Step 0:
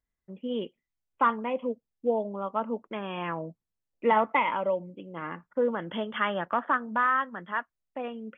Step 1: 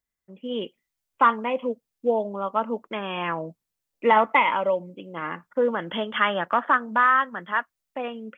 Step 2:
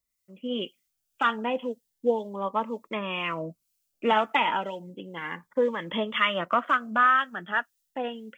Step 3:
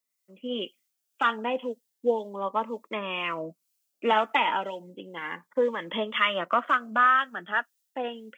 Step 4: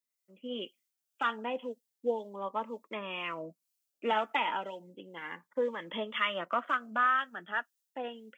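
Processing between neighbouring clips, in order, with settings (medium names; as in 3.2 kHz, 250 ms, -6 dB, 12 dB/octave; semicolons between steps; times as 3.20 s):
tilt EQ +1.5 dB/octave; level rider gain up to 5.5 dB
treble shelf 2.6 kHz +9.5 dB; harmonic tremolo 2 Hz, depth 50%, crossover 1.6 kHz; Shepard-style phaser rising 0.32 Hz; trim +1 dB
high-pass 230 Hz 12 dB/octave
band-stop 1.1 kHz, Q 27; trim -6.5 dB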